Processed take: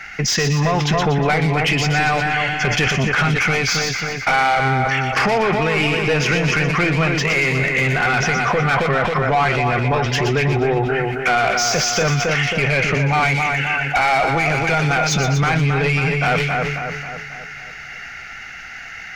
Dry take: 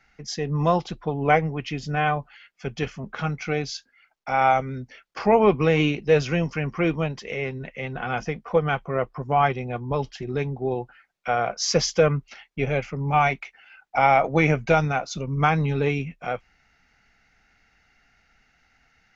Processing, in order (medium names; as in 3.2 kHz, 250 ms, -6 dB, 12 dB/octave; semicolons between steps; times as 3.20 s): graphic EQ 250/500/1000/4000 Hz -8/-9/-10/-9 dB; compression 6:1, threshold -38 dBFS, peak gain reduction 16 dB; overdrive pedal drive 22 dB, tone 2.8 kHz, clips at -25 dBFS; on a send: two-band feedback delay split 2.3 kHz, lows 270 ms, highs 120 ms, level -5.5 dB; on the sum: loudness maximiser +28.5 dB; decay stretcher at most 30 dB/s; trim -9 dB